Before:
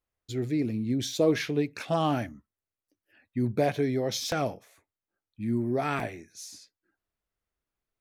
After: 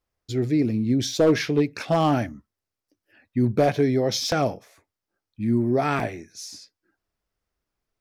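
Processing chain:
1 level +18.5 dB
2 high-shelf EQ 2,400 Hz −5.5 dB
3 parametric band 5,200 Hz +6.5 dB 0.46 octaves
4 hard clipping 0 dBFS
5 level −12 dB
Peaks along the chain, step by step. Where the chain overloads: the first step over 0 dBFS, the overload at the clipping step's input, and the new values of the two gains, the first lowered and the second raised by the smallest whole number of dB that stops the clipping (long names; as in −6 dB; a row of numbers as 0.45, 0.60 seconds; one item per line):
+6.0, +6.0, +6.0, 0.0, −12.0 dBFS
step 1, 6.0 dB
step 1 +12.5 dB, step 5 −6 dB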